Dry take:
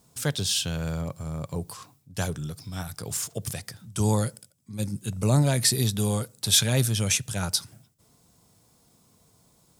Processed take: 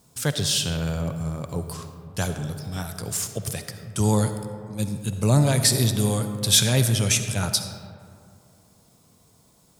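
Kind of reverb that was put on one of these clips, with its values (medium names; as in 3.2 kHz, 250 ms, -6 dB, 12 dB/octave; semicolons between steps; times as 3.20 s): algorithmic reverb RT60 2.4 s, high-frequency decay 0.4×, pre-delay 25 ms, DRR 8 dB; trim +2.5 dB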